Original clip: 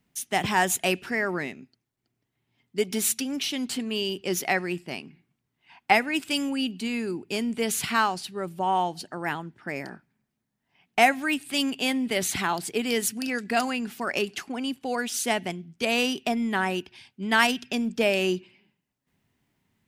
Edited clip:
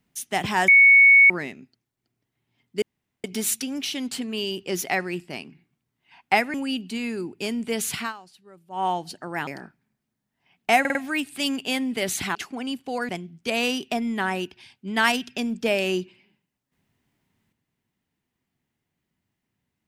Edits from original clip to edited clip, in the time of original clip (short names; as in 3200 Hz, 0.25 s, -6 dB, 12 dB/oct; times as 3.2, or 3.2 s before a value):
0.68–1.3 bleep 2220 Hz -9.5 dBFS
2.82 insert room tone 0.42 s
6.12–6.44 cut
7.88–8.75 dip -17.5 dB, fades 0.15 s
9.37–9.76 cut
11.09 stutter 0.05 s, 4 plays
12.49–14.32 cut
15.06–15.44 cut